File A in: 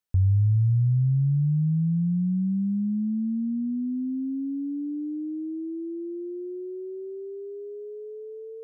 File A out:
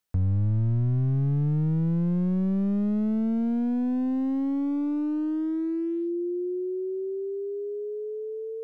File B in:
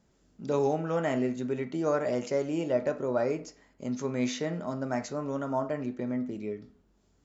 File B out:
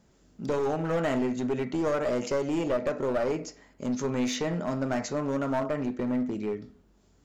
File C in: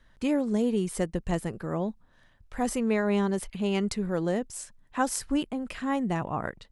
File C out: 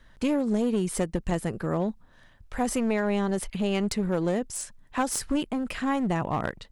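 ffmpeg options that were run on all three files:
-af "acompressor=threshold=-27dB:ratio=3,aeval=exprs='clip(val(0),-1,0.0299)':c=same,volume=5dB"

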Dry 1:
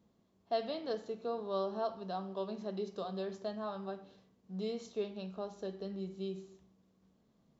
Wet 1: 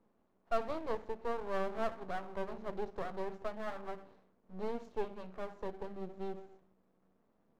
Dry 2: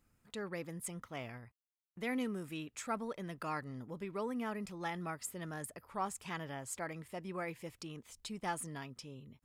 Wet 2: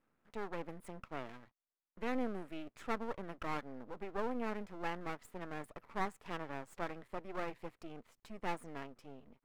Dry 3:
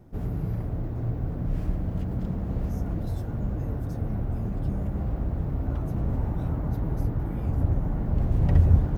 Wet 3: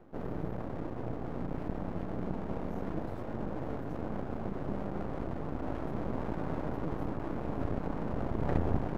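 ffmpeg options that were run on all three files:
-filter_complex "[0:a]acrossover=split=200 2000:gain=0.141 1 0.112[a][b][c];[a][b][c]amix=inputs=3:normalize=0,aeval=exprs='max(val(0),0)':c=same,volume=5dB"

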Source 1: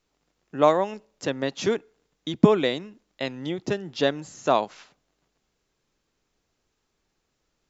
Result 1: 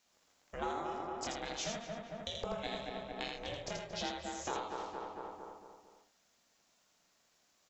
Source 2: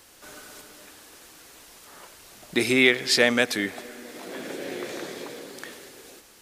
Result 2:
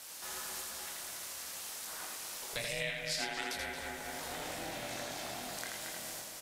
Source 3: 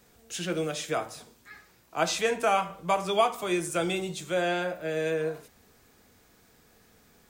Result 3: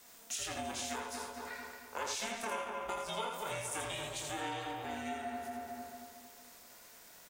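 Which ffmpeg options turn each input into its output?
-filter_complex "[0:a]bass=f=250:g=-9,treble=f=4k:g=5,asplit=2[a][b];[b]adelay=23,volume=-4dB[c];[a][c]amix=inputs=2:normalize=0,aeval=exprs='val(0)*sin(2*PI*230*n/s)':c=same,asplit=2[d][e];[e]adelay=226,lowpass=f=2.1k:p=1,volume=-7dB,asplit=2[f][g];[g]adelay=226,lowpass=f=2.1k:p=1,volume=0.47,asplit=2[h][i];[i]adelay=226,lowpass=f=2.1k:p=1,volume=0.47,asplit=2[j][k];[k]adelay=226,lowpass=f=2.1k:p=1,volume=0.47,asplit=2[l][m];[m]adelay=226,lowpass=f=2.1k:p=1,volume=0.47,asplit=2[n][o];[o]adelay=226,lowpass=f=2.1k:p=1,volume=0.47[p];[f][h][j][l][n][p]amix=inputs=6:normalize=0[q];[d][q]amix=inputs=2:normalize=0,acompressor=threshold=-41dB:ratio=4,lowshelf=f=290:g=-8.5,bandreject=f=134.1:t=h:w=4,bandreject=f=268.2:t=h:w=4,bandreject=f=402.3:t=h:w=4,bandreject=f=536.4:t=h:w=4,bandreject=f=670.5:t=h:w=4,bandreject=f=804.6:t=h:w=4,bandreject=f=938.7:t=h:w=4,bandreject=f=1.0728k:t=h:w=4,bandreject=f=1.2069k:t=h:w=4,bandreject=f=1.341k:t=h:w=4,bandreject=f=1.4751k:t=h:w=4,bandreject=f=1.6092k:t=h:w=4,bandreject=f=1.7433k:t=h:w=4,bandreject=f=1.8774k:t=h:w=4,bandreject=f=2.0115k:t=h:w=4,bandreject=f=2.1456k:t=h:w=4,bandreject=f=2.2797k:t=h:w=4,bandreject=f=2.4138k:t=h:w=4,bandreject=f=2.5479k:t=h:w=4,bandreject=f=2.682k:t=h:w=4,bandreject=f=2.8161k:t=h:w=4,bandreject=f=2.9502k:t=h:w=4,bandreject=f=3.0843k:t=h:w=4,bandreject=f=3.2184k:t=h:w=4,bandreject=f=3.3525k:t=h:w=4,bandreject=f=3.4866k:t=h:w=4,bandreject=f=3.6207k:t=h:w=4,bandreject=f=3.7548k:t=h:w=4,bandreject=f=3.8889k:t=h:w=4,bandreject=f=4.023k:t=h:w=4,bandreject=f=4.1571k:t=h:w=4,bandreject=f=4.2912k:t=h:w=4,bandreject=f=4.4253k:t=h:w=4,bandreject=f=4.5594k:t=h:w=4,bandreject=f=4.6935k:t=h:w=4,asplit=2[r][s];[s]aecho=0:1:82:0.631[t];[r][t]amix=inputs=2:normalize=0,volume=3dB"

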